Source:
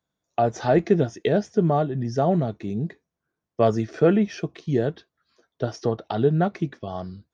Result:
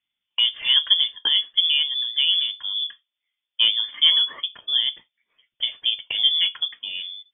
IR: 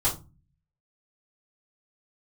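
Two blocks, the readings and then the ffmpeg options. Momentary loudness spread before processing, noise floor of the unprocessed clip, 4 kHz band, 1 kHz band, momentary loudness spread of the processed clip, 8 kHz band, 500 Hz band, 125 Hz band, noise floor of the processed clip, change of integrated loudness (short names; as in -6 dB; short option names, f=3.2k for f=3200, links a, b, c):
12 LU, -85 dBFS, +29.0 dB, -19.0 dB, 13 LU, n/a, under -30 dB, under -35 dB, -85 dBFS, +4.0 dB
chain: -filter_complex "[0:a]asplit=2[a][b];[1:a]atrim=start_sample=2205,atrim=end_sample=3969[c];[b][c]afir=irnorm=-1:irlink=0,volume=-25dB[d];[a][d]amix=inputs=2:normalize=0,lowpass=f=3.1k:t=q:w=0.5098,lowpass=f=3.1k:t=q:w=0.6013,lowpass=f=3.1k:t=q:w=0.9,lowpass=f=3.1k:t=q:w=2.563,afreqshift=-3600"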